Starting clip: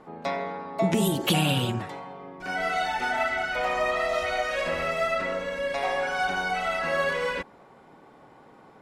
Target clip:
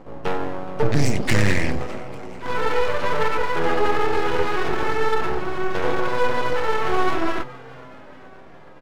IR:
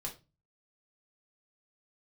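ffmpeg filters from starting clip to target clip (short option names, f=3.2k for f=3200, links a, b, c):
-filter_complex "[0:a]equalizer=f=11k:t=o:w=0.67:g=-4.5,aeval=exprs='clip(val(0),-1,0.126)':c=same,asetrate=29433,aresample=44100,atempo=1.49831,aeval=exprs='max(val(0),0)':c=same,asplit=6[a][b][c][d][e][f];[b]adelay=422,afreqshift=130,volume=-21dB[g];[c]adelay=844,afreqshift=260,volume=-25.4dB[h];[d]adelay=1266,afreqshift=390,volume=-29.9dB[i];[e]adelay=1688,afreqshift=520,volume=-34.3dB[j];[f]adelay=2110,afreqshift=650,volume=-38.7dB[k];[a][g][h][i][j][k]amix=inputs=6:normalize=0,asplit=2[l][m];[1:a]atrim=start_sample=2205[n];[m][n]afir=irnorm=-1:irlink=0,volume=-11dB[o];[l][o]amix=inputs=2:normalize=0,volume=7.5dB"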